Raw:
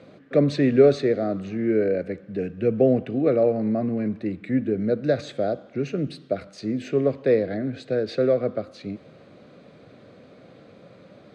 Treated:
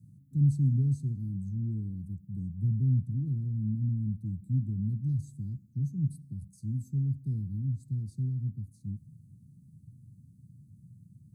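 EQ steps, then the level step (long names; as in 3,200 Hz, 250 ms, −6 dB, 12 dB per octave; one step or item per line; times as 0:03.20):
high-pass filter 83 Hz
inverse Chebyshev band-stop filter 510–3,100 Hz, stop band 70 dB
parametric band 1,300 Hz +10.5 dB 1.2 octaves
+8.0 dB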